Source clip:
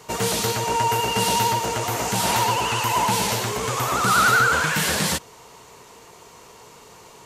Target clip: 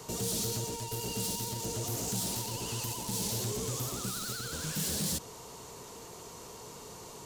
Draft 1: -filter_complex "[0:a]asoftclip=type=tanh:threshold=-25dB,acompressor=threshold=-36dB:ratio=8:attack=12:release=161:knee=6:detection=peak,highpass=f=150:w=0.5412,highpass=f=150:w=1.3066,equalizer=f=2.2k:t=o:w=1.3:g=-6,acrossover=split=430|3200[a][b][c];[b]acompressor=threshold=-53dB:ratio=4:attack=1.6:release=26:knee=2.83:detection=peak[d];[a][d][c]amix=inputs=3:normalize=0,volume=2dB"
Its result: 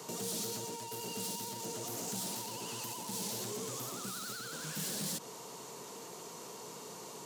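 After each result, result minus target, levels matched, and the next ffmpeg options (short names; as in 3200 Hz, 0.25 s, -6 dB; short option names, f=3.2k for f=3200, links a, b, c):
compressor: peak gain reduction +5 dB; 125 Hz band -5.0 dB
-filter_complex "[0:a]asoftclip=type=tanh:threshold=-25dB,acompressor=threshold=-30dB:ratio=8:attack=12:release=161:knee=6:detection=peak,highpass=f=150:w=0.5412,highpass=f=150:w=1.3066,equalizer=f=2.2k:t=o:w=1.3:g=-6,acrossover=split=430|3200[a][b][c];[b]acompressor=threshold=-53dB:ratio=4:attack=1.6:release=26:knee=2.83:detection=peak[d];[a][d][c]amix=inputs=3:normalize=0,volume=2dB"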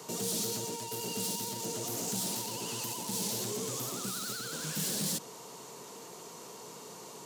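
125 Hz band -5.5 dB
-filter_complex "[0:a]asoftclip=type=tanh:threshold=-25dB,acompressor=threshold=-30dB:ratio=8:attack=12:release=161:knee=6:detection=peak,equalizer=f=2.2k:t=o:w=1.3:g=-6,acrossover=split=430|3200[a][b][c];[b]acompressor=threshold=-53dB:ratio=4:attack=1.6:release=26:knee=2.83:detection=peak[d];[a][d][c]amix=inputs=3:normalize=0,volume=2dB"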